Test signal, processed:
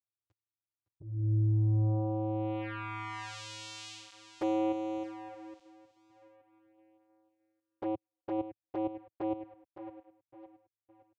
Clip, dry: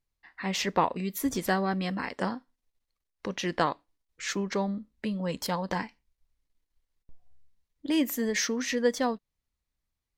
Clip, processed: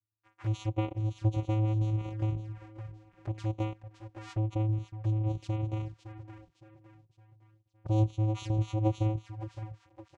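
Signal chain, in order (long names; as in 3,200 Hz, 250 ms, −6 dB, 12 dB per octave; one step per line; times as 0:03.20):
repeating echo 562 ms, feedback 41%, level −11 dB
channel vocoder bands 4, square 108 Hz
flanger swept by the level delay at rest 10.1 ms, full sweep at −30 dBFS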